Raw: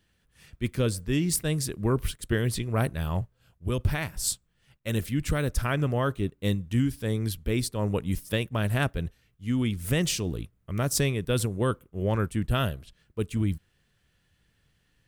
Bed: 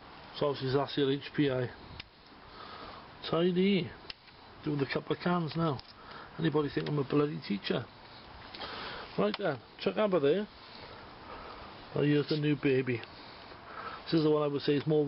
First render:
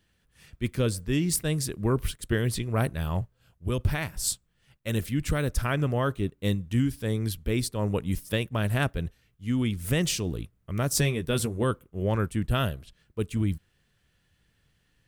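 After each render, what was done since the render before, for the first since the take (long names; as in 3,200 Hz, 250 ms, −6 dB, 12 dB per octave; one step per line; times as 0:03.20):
0:10.93–0:11.64: double-tracking delay 13 ms −7 dB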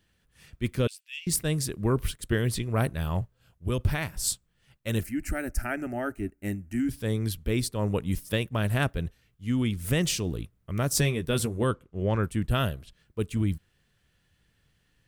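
0:00.87–0:01.27: four-pole ladder high-pass 2,400 Hz, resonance 65%
0:05.03–0:06.89: phaser with its sweep stopped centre 710 Hz, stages 8
0:11.72–0:12.23: low-pass filter 6,600 Hz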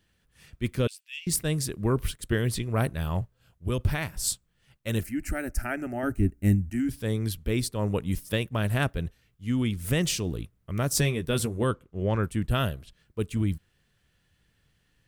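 0:06.03–0:06.70: bass and treble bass +14 dB, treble +4 dB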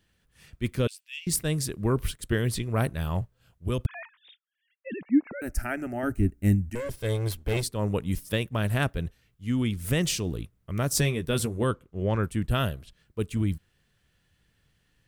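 0:03.86–0:05.42: three sine waves on the formant tracks
0:06.75–0:07.63: lower of the sound and its delayed copy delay 1.9 ms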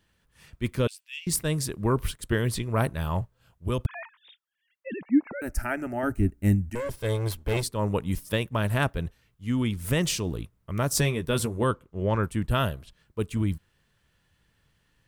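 parametric band 910 Hz +6 dB 1 octave
notch filter 750 Hz, Q 12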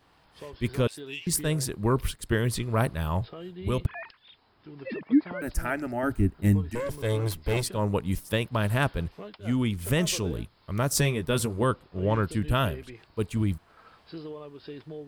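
mix in bed −12.5 dB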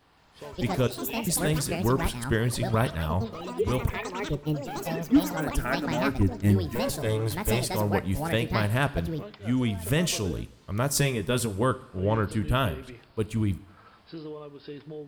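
coupled-rooms reverb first 0.66 s, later 2.4 s, from −18 dB, DRR 14.5 dB
delay with pitch and tempo change per echo 169 ms, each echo +7 semitones, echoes 2, each echo −6 dB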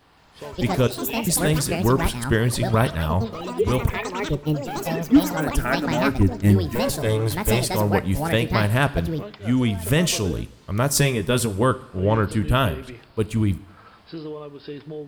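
level +5.5 dB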